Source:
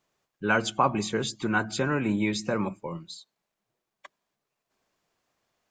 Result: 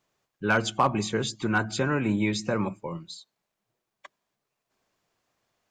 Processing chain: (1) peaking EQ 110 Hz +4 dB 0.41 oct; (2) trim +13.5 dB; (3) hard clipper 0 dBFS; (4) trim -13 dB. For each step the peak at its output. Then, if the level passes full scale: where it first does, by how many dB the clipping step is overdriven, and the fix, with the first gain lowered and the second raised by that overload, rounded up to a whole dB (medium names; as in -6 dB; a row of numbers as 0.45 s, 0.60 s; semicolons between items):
-9.5 dBFS, +4.0 dBFS, 0.0 dBFS, -13.0 dBFS; step 2, 4.0 dB; step 2 +9.5 dB, step 4 -9 dB